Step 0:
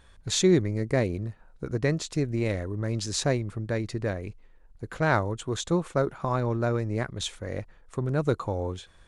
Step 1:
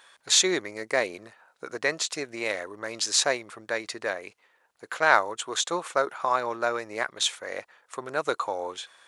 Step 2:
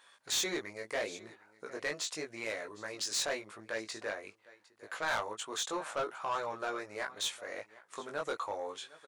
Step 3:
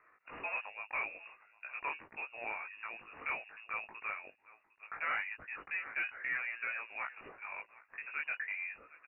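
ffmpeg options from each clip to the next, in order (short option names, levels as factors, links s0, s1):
-af "highpass=780,volume=2.37"
-af "aecho=1:1:756:0.075,flanger=delay=18:depth=2.4:speed=0.79,asoftclip=type=tanh:threshold=0.0631,volume=0.668"
-af "lowpass=f=2500:t=q:w=0.5098,lowpass=f=2500:t=q:w=0.6013,lowpass=f=2500:t=q:w=0.9,lowpass=f=2500:t=q:w=2.563,afreqshift=-2900,volume=0.794"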